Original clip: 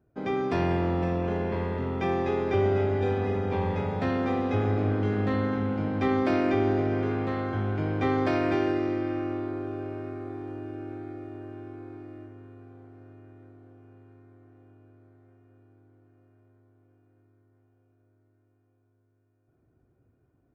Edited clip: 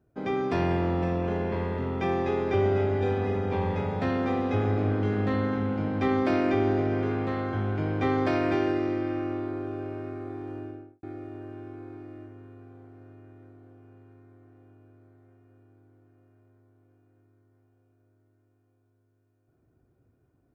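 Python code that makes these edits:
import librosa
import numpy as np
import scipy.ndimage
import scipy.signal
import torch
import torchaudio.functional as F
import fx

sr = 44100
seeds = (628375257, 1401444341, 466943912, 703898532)

y = fx.studio_fade_out(x, sr, start_s=10.57, length_s=0.46)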